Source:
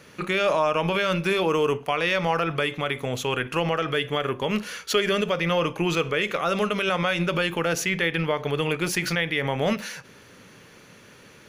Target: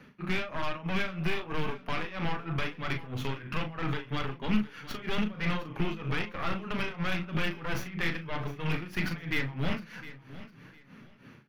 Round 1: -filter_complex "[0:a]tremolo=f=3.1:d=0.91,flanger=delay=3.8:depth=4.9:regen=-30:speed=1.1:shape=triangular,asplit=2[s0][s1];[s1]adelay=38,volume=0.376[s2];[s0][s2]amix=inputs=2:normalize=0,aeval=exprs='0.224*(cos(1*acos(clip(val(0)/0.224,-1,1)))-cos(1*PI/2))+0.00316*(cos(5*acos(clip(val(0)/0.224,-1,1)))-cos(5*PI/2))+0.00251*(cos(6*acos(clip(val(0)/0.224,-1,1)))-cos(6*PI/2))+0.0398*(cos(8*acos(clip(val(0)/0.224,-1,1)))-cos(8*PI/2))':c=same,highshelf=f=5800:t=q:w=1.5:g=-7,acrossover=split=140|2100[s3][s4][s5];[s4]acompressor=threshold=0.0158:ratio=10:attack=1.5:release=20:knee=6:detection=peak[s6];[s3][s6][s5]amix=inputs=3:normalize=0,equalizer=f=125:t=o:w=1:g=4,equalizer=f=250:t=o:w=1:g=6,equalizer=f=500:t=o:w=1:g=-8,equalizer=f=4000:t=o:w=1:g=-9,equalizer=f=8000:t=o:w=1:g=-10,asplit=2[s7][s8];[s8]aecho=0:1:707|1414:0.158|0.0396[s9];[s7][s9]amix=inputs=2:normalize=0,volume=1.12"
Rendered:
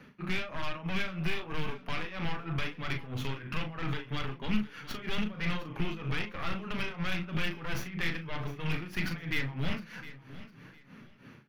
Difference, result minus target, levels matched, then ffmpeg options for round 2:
compression: peak gain reduction +5.5 dB
-filter_complex "[0:a]tremolo=f=3.1:d=0.91,flanger=delay=3.8:depth=4.9:regen=-30:speed=1.1:shape=triangular,asplit=2[s0][s1];[s1]adelay=38,volume=0.376[s2];[s0][s2]amix=inputs=2:normalize=0,aeval=exprs='0.224*(cos(1*acos(clip(val(0)/0.224,-1,1)))-cos(1*PI/2))+0.00316*(cos(5*acos(clip(val(0)/0.224,-1,1)))-cos(5*PI/2))+0.00251*(cos(6*acos(clip(val(0)/0.224,-1,1)))-cos(6*PI/2))+0.0398*(cos(8*acos(clip(val(0)/0.224,-1,1)))-cos(8*PI/2))':c=same,highshelf=f=5800:t=q:w=1.5:g=-7,acrossover=split=140|2100[s3][s4][s5];[s4]acompressor=threshold=0.0316:ratio=10:attack=1.5:release=20:knee=6:detection=peak[s6];[s3][s6][s5]amix=inputs=3:normalize=0,equalizer=f=125:t=o:w=1:g=4,equalizer=f=250:t=o:w=1:g=6,equalizer=f=500:t=o:w=1:g=-8,equalizer=f=4000:t=o:w=1:g=-9,equalizer=f=8000:t=o:w=1:g=-10,asplit=2[s7][s8];[s8]aecho=0:1:707|1414:0.158|0.0396[s9];[s7][s9]amix=inputs=2:normalize=0,volume=1.12"

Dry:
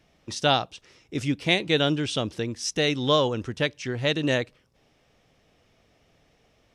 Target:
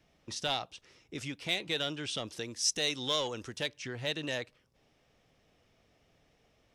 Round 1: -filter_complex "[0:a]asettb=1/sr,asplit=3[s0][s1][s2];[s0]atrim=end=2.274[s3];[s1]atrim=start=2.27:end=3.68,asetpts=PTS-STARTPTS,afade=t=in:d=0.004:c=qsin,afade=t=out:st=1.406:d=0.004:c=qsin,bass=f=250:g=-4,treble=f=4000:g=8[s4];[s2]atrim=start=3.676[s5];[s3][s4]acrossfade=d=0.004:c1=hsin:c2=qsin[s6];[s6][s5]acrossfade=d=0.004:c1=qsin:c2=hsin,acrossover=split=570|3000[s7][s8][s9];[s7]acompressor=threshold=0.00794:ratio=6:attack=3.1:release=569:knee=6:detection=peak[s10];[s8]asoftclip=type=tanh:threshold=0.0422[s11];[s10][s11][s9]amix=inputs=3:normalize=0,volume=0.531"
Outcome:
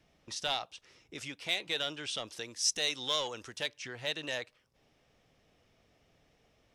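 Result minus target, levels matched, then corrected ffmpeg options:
compression: peak gain reduction +8.5 dB
-filter_complex "[0:a]asettb=1/sr,asplit=3[s0][s1][s2];[s0]atrim=end=2.274[s3];[s1]atrim=start=2.27:end=3.68,asetpts=PTS-STARTPTS,afade=t=in:d=0.004:c=qsin,afade=t=out:st=1.406:d=0.004:c=qsin,bass=f=250:g=-4,treble=f=4000:g=8[s4];[s2]atrim=start=3.676[s5];[s3][s4]acrossfade=d=0.004:c1=hsin:c2=qsin[s6];[s6][s5]acrossfade=d=0.004:c1=qsin:c2=hsin,acrossover=split=570|3000[s7][s8][s9];[s7]acompressor=threshold=0.0251:ratio=6:attack=3.1:release=569:knee=6:detection=peak[s10];[s8]asoftclip=type=tanh:threshold=0.0422[s11];[s10][s11][s9]amix=inputs=3:normalize=0,volume=0.531"

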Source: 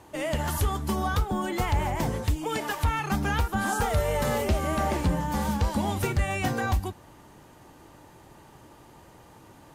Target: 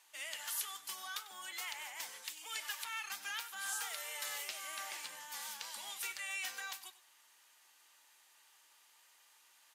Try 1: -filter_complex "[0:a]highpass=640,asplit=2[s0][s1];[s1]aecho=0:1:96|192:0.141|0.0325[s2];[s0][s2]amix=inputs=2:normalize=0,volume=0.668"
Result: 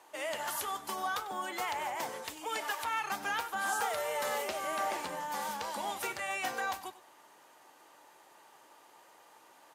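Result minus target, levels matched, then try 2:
500 Hz band +15.0 dB
-filter_complex "[0:a]highpass=2400,asplit=2[s0][s1];[s1]aecho=0:1:96|192:0.141|0.0325[s2];[s0][s2]amix=inputs=2:normalize=0,volume=0.668"

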